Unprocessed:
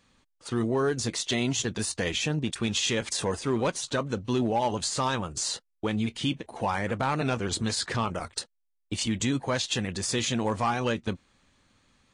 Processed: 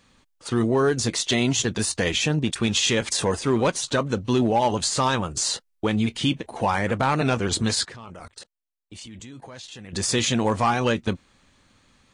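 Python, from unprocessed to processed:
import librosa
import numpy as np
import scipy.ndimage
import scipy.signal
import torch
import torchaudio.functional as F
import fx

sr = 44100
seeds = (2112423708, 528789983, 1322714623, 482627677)

y = fx.level_steps(x, sr, step_db=23, at=(7.85, 9.93))
y = y * librosa.db_to_amplitude(5.5)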